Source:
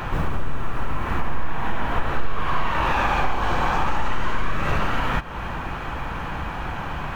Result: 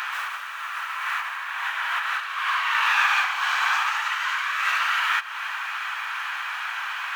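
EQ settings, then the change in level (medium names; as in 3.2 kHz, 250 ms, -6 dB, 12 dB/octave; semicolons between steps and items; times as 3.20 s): high-pass 1.3 kHz 24 dB/octave; +7.0 dB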